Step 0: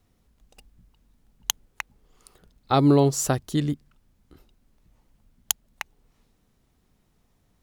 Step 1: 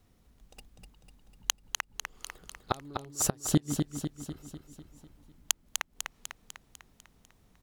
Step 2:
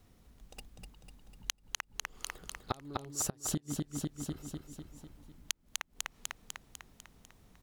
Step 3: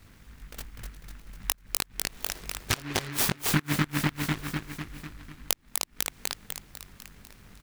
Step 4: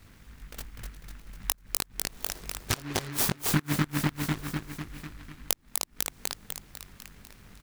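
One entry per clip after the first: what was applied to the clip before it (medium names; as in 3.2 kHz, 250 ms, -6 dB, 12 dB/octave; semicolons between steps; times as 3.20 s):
inverted gate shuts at -13 dBFS, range -31 dB; feedback delay 249 ms, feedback 56%, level -5.5 dB; trim +1 dB
compression 8:1, threshold -34 dBFS, peak gain reduction 15.5 dB; trim +2.5 dB
doubling 20 ms -2.5 dB; delay time shaken by noise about 1.6 kHz, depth 0.36 ms; trim +7.5 dB
dynamic bell 2.4 kHz, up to -4 dB, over -45 dBFS, Q 0.76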